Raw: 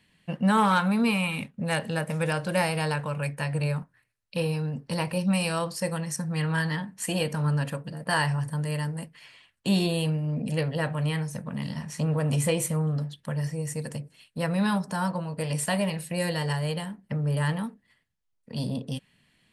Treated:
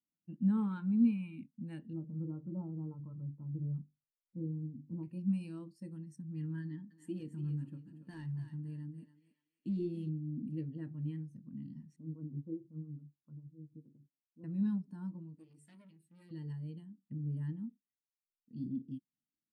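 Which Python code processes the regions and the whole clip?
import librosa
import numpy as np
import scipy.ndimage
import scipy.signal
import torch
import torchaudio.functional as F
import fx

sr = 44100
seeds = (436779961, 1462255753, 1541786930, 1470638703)

y = fx.chain(x, sr, fx.brickwall_lowpass(high_hz=1400.0),
    fx.low_shelf(hz=94.0, db=10.0),
    fx.hum_notches(base_hz=50, count=10), at=(1.93, 5.03))
y = fx.chain(y, sr, fx.overload_stage(gain_db=23.0),
    fx.echo_thinned(ms=284, feedback_pct=43, hz=510.0, wet_db=-6), at=(6.62, 10.09))
y = fx.chain(y, sr, fx.cheby_ripple(hz=1500.0, ripple_db=3),
    fx.harmonic_tremolo(hz=7.2, depth_pct=70, crossover_hz=480.0), at=(11.96, 14.44))
y = fx.chain(y, sr, fx.low_shelf(hz=210.0, db=-10.0),
    fx.hum_notches(base_hz=50, count=9),
    fx.transformer_sat(knee_hz=2800.0), at=(15.35, 16.31))
y = fx.curve_eq(y, sr, hz=(180.0, 320.0, 520.0, 2500.0), db=(0, 11, -12, -6))
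y = fx.spectral_expand(y, sr, expansion=1.5)
y = y * librosa.db_to_amplitude(-7.5)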